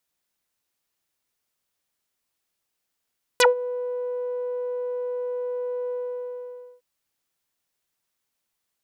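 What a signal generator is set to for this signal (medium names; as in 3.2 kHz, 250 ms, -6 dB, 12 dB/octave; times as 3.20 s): synth note saw B4 12 dB/octave, low-pass 610 Hz, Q 6.1, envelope 4.5 oct, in 0.06 s, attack 1.2 ms, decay 0.14 s, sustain -18.5 dB, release 0.90 s, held 2.51 s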